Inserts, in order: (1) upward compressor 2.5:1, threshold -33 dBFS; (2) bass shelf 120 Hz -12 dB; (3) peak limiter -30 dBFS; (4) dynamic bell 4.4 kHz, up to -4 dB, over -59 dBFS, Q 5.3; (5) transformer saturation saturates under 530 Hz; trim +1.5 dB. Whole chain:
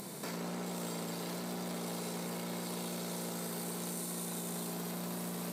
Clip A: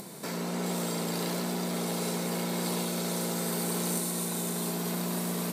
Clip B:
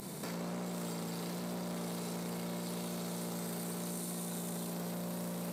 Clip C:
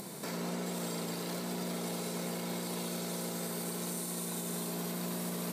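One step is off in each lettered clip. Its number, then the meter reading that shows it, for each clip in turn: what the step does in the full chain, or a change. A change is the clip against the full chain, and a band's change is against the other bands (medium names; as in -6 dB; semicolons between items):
3, mean gain reduction 6.5 dB; 2, 125 Hz band +3.5 dB; 5, crest factor change -2.0 dB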